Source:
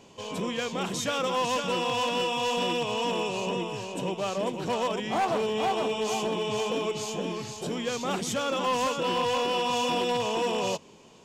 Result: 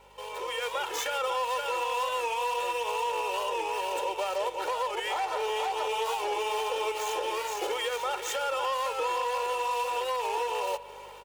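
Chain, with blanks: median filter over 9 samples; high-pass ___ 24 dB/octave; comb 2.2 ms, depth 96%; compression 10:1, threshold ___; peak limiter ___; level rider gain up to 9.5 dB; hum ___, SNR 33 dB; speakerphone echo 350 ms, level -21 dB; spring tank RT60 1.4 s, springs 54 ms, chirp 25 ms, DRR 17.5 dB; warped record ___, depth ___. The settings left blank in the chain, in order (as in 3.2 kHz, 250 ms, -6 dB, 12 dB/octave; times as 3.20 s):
560 Hz, -36 dBFS, -30.5 dBFS, 50 Hz, 45 rpm, 100 cents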